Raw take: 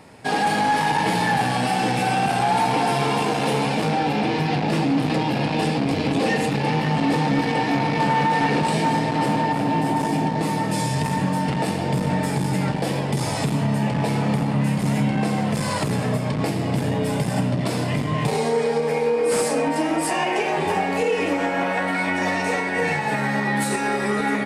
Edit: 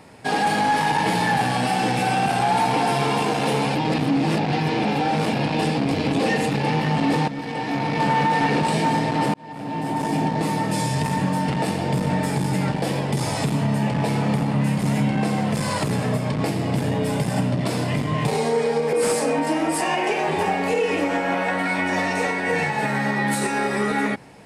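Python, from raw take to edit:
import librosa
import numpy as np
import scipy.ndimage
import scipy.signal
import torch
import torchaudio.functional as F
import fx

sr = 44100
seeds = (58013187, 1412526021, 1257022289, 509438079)

y = fx.edit(x, sr, fx.reverse_span(start_s=3.75, length_s=1.58),
    fx.fade_in_from(start_s=7.28, length_s=0.81, floor_db=-12.5),
    fx.fade_in_span(start_s=9.34, length_s=0.85),
    fx.cut(start_s=18.93, length_s=0.29), tone=tone)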